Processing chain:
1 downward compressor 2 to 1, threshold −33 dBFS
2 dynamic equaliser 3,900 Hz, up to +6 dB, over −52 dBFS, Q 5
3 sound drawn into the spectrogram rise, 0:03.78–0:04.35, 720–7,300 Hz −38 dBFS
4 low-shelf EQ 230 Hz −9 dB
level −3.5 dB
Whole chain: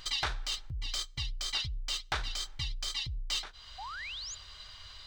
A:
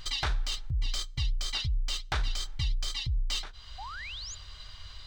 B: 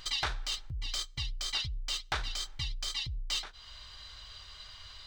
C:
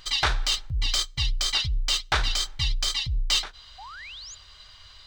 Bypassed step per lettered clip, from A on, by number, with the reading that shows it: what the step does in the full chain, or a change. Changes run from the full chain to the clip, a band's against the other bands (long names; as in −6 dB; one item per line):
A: 4, 125 Hz band +7.5 dB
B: 3, change in momentary loudness spread +3 LU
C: 1, average gain reduction 7.0 dB